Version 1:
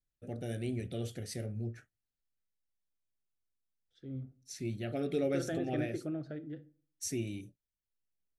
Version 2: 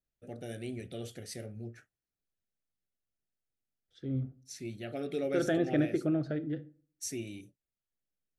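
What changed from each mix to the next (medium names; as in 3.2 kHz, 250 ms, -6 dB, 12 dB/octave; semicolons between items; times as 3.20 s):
first voice: add bass shelf 210 Hz -8 dB; second voice +8.0 dB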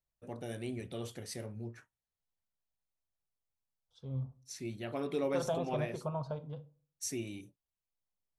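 second voice: add static phaser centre 760 Hz, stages 4; master: remove Butterworth band-stop 1 kHz, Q 1.9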